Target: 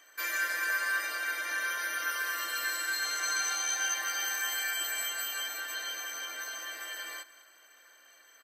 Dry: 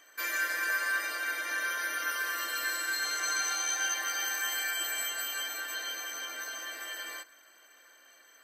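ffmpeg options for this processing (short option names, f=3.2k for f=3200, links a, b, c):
-filter_complex "[0:a]lowshelf=f=340:g=-6,asplit=2[a][b];[b]aecho=0:1:215:0.112[c];[a][c]amix=inputs=2:normalize=0"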